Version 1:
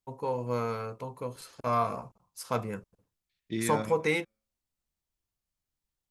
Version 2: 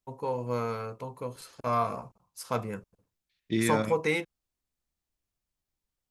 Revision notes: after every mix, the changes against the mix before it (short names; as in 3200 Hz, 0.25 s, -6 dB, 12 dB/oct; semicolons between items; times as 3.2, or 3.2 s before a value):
second voice +6.5 dB; reverb: off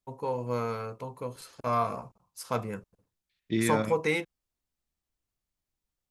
second voice: add air absorption 62 m